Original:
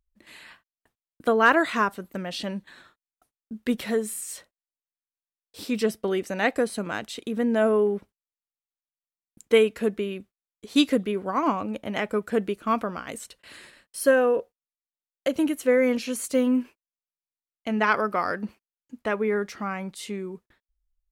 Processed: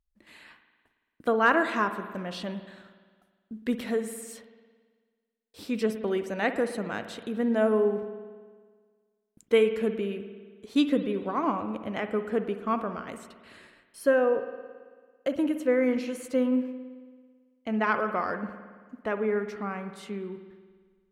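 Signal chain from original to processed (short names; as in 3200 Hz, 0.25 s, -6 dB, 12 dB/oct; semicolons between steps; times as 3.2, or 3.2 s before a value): high shelf 3500 Hz -6 dB, from 10.75 s -11 dB; reverb RT60 1.6 s, pre-delay 55 ms, DRR 9 dB; gain -3 dB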